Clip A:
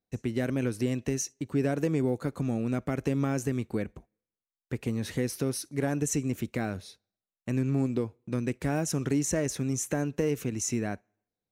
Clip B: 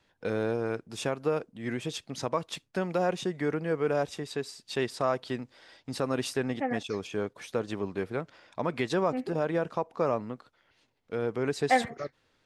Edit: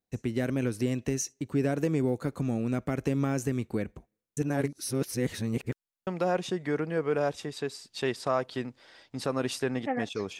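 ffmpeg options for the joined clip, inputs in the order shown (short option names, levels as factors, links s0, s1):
-filter_complex "[0:a]apad=whole_dur=10.39,atrim=end=10.39,asplit=2[s0][s1];[s0]atrim=end=4.372[s2];[s1]atrim=start=4.368:end=6.072,asetpts=PTS-STARTPTS,areverse[s3];[1:a]atrim=start=2.808:end=7.13[s4];[s2][s3]acrossfade=d=0.004:c1=hsin:c2=hsin[s5];[s5][s4]acrossfade=d=0.004:c1=hsin:c2=hsin"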